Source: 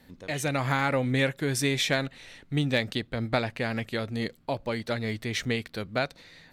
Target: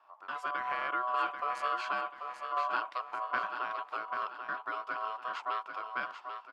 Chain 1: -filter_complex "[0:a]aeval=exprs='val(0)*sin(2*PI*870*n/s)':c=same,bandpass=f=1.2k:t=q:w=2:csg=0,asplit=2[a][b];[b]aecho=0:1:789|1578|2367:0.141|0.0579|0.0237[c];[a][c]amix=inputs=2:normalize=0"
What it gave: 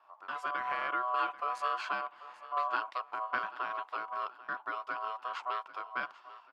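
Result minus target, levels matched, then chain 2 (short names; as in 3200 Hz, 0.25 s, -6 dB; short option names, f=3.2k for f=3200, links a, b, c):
echo-to-direct -9.5 dB
-filter_complex "[0:a]aeval=exprs='val(0)*sin(2*PI*870*n/s)':c=same,bandpass=f=1.2k:t=q:w=2:csg=0,asplit=2[a][b];[b]aecho=0:1:789|1578|2367|3156|3945:0.422|0.173|0.0709|0.0291|0.0119[c];[a][c]amix=inputs=2:normalize=0"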